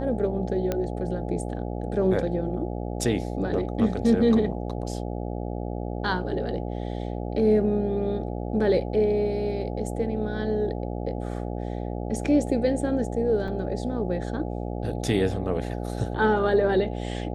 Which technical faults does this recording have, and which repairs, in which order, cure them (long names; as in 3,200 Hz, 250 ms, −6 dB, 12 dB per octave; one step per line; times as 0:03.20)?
mains buzz 60 Hz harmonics 14 −31 dBFS
0:00.72: click −13 dBFS
0:13.48: drop-out 3.4 ms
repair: click removal
hum removal 60 Hz, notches 14
repair the gap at 0:13.48, 3.4 ms